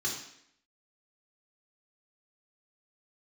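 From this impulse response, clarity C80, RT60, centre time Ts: 8.0 dB, 0.70 s, 37 ms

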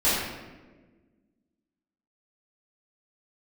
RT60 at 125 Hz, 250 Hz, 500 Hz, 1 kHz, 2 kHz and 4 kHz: 1.8, 2.1, 1.6, 1.1, 1.1, 0.80 s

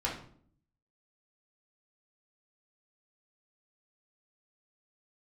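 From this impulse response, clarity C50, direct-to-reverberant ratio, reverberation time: 6.0 dB, -5.0 dB, 0.55 s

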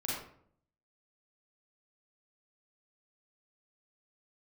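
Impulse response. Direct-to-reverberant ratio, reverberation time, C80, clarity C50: -6.5 dB, 0.60 s, 4.0 dB, -1.0 dB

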